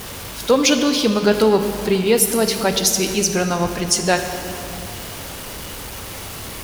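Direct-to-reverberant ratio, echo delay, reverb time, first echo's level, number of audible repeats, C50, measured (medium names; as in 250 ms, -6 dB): 6.0 dB, no echo, 2.8 s, no echo, no echo, 7.5 dB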